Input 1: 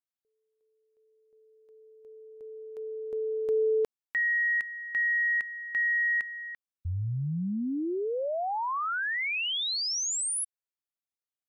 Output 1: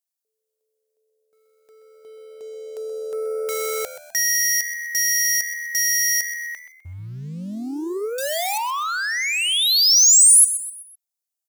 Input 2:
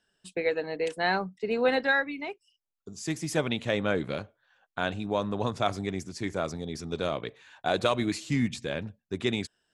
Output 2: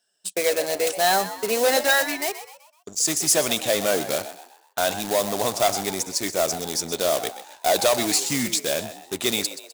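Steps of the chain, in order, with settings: HPF 170 Hz 6 dB/oct; bell 660 Hz +8 dB 0.51 oct; sample leveller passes 2; in parallel at -9.5 dB: wrapped overs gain 22 dB; on the sum: tone controls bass -5 dB, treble +15 dB; on a send: frequency-shifting echo 0.127 s, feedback 42%, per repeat +78 Hz, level -12.5 dB; on the sum: gain -3 dB

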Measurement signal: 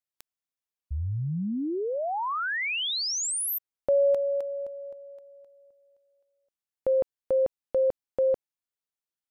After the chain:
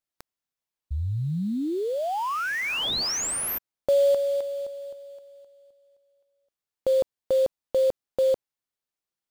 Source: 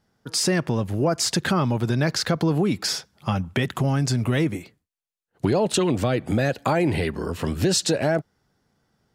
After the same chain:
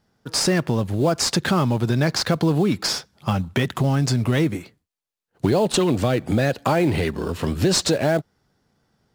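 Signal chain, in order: bell 3800 Hz +2.5 dB 1.4 oct; in parallel at -11 dB: sample-rate reducer 4000 Hz, jitter 20%

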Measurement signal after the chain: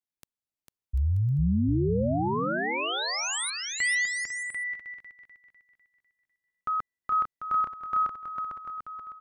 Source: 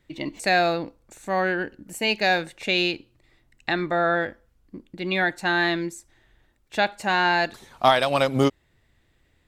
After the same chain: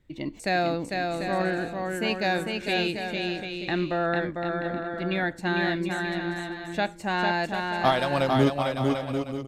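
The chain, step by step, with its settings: low shelf 390 Hz +9 dB; on a send: bouncing-ball echo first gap 0.45 s, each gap 0.65×, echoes 5; on the sum: gain -7 dB

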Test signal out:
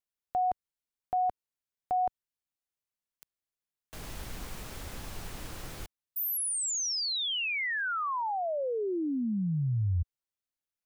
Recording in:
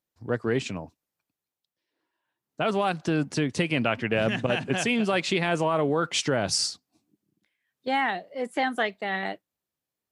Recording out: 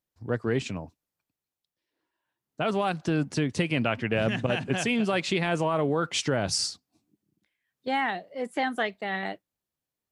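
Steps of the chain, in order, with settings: low shelf 110 Hz +7.5 dB; gain -2 dB

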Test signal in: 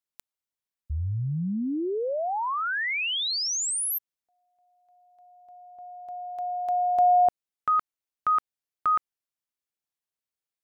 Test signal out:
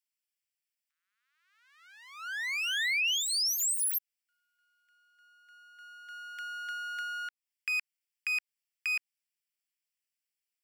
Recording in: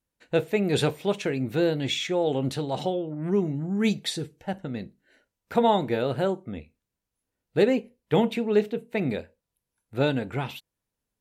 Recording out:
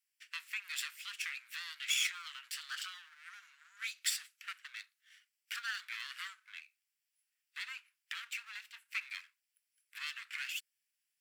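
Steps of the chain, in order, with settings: minimum comb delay 0.38 ms; compressor 6:1, threshold -30 dBFS; steep high-pass 1400 Hz 48 dB/oct; gain +3.5 dB

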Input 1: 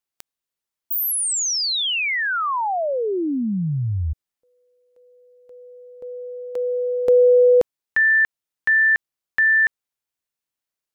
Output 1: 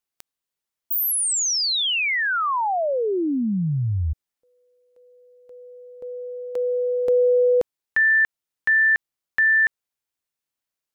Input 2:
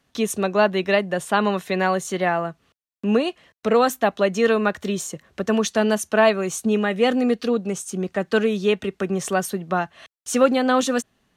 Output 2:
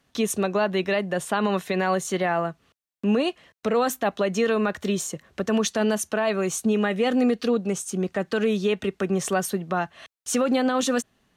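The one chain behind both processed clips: limiter -14 dBFS

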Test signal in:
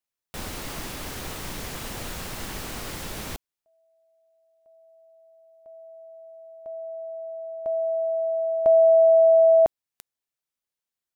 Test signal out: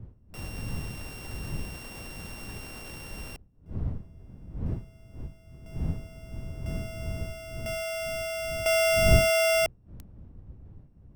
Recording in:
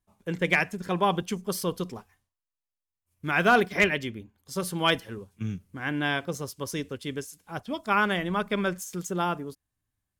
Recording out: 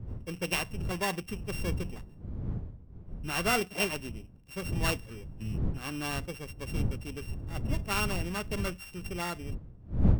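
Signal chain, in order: sample sorter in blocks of 16 samples; wind noise 110 Hz -27 dBFS; gain -7.5 dB

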